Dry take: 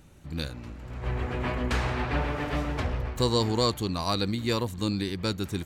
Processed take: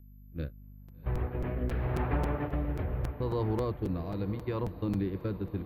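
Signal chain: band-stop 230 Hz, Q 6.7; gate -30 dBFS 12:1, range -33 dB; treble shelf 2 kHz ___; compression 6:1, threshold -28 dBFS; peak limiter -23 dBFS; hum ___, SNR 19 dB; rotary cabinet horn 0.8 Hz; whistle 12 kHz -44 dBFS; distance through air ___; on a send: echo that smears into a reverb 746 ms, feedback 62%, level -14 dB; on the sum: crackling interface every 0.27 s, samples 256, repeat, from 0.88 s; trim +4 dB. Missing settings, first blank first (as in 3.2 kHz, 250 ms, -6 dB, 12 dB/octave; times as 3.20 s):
-8 dB, 50 Hz, 490 m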